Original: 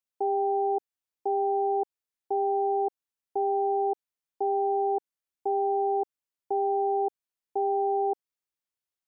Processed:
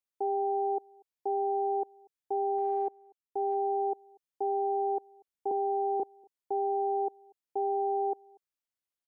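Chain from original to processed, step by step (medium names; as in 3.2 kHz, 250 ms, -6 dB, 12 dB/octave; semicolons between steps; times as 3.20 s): 2.58–3.55 s: transient shaper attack -1 dB, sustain -8 dB; 5.51–6.00 s: high-pass 270 Hz 24 dB/octave; echo from a far wall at 41 m, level -27 dB; trim -3.5 dB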